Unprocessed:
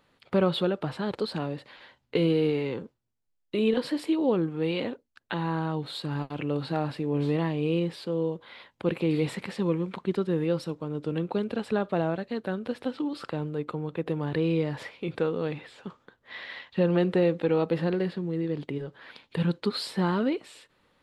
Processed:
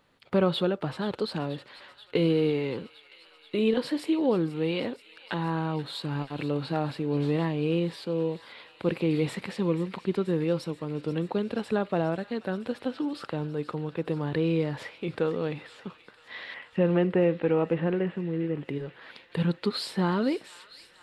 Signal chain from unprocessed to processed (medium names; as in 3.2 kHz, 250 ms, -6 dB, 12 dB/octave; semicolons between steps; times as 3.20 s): 16.54–18.68 s: steep low-pass 3 kHz 48 dB/octave; feedback echo behind a high-pass 482 ms, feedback 80%, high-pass 1.7 kHz, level -14.5 dB